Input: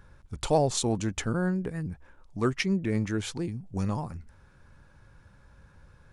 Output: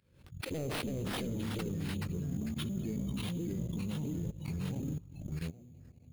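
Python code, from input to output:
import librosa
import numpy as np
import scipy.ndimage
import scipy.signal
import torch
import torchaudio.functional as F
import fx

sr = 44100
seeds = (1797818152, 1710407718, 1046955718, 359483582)

p1 = fx.pitch_trill(x, sr, semitones=-9.0, every_ms=269)
p2 = fx.dynamic_eq(p1, sr, hz=220.0, q=2.8, threshold_db=-45.0, ratio=4.0, max_db=5)
p3 = p2 + fx.echo_feedback(p2, sr, ms=307, feedback_pct=36, wet_db=-21.0, dry=0)
p4 = fx.noise_reduce_blind(p3, sr, reduce_db=25)
p5 = scipy.signal.sosfilt(scipy.signal.butter(2, 91.0, 'highpass', fs=sr, output='sos'), p4)
p6 = fx.rev_spring(p5, sr, rt60_s=1.3, pass_ms=(54,), chirp_ms=20, drr_db=12.0)
p7 = 10.0 ** (-23.5 / 20.0) * np.tanh(p6 / 10.0 ** (-23.5 / 20.0))
p8 = fx.echo_pitch(p7, sr, ms=265, semitones=-2, count=3, db_per_echo=-3.0)
p9 = fx.band_shelf(p8, sr, hz=1100.0, db=-15.0, octaves=1.7)
p10 = fx.level_steps(p9, sr, step_db=18)
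p11 = fx.sample_hold(p10, sr, seeds[0], rate_hz=6800.0, jitter_pct=0)
y = fx.pre_swell(p11, sr, db_per_s=88.0)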